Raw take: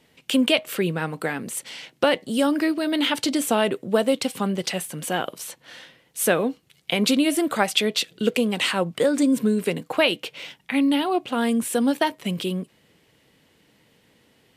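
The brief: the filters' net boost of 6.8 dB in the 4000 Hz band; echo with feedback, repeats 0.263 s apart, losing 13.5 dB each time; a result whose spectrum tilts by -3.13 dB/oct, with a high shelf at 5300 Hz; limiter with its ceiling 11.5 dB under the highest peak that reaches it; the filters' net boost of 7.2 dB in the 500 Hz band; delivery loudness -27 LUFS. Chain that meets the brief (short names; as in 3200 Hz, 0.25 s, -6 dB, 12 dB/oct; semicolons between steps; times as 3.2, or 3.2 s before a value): bell 500 Hz +8.5 dB; bell 4000 Hz +5.5 dB; high shelf 5300 Hz +9 dB; limiter -9 dBFS; feedback echo 0.263 s, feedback 21%, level -13.5 dB; gain -6.5 dB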